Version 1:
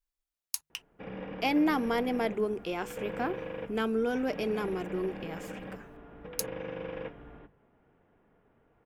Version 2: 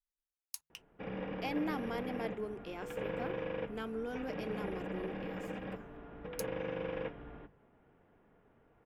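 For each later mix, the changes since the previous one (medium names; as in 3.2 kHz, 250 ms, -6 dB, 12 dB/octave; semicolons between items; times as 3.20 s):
speech -10.5 dB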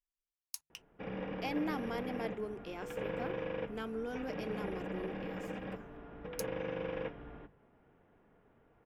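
master: add peaking EQ 5.7 kHz +3 dB 0.38 oct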